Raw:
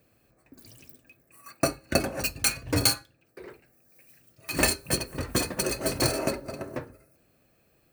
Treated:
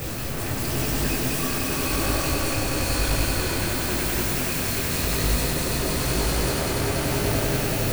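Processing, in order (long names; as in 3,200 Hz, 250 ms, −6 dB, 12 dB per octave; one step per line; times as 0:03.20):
sign of each sample alone
low-shelf EQ 89 Hz +10.5 dB
echo that builds up and dies away 95 ms, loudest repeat 5, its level −4 dB
micro pitch shift up and down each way 33 cents
level +3 dB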